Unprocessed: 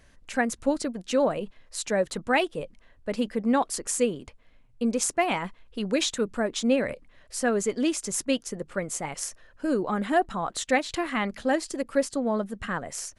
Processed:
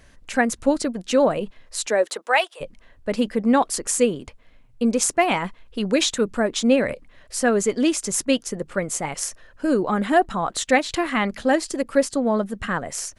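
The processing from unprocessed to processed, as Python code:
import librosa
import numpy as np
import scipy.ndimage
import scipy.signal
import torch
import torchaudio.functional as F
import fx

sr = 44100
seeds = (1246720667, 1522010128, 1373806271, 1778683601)

y = fx.highpass(x, sr, hz=fx.line((1.86, 240.0), (2.6, 810.0)), slope=24, at=(1.86, 2.6), fade=0.02)
y = F.gain(torch.from_numpy(y), 5.5).numpy()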